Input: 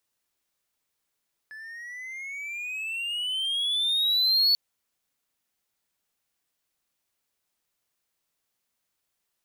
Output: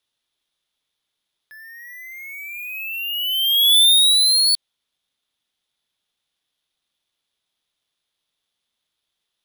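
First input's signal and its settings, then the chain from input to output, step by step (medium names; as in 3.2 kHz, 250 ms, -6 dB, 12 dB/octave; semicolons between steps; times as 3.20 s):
gliding synth tone triangle, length 3.04 s, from 1.72 kHz, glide +16.5 st, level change +22 dB, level -15.5 dB
peaking EQ 3.5 kHz +13.5 dB 0.48 oct; careless resampling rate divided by 3×, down filtered, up hold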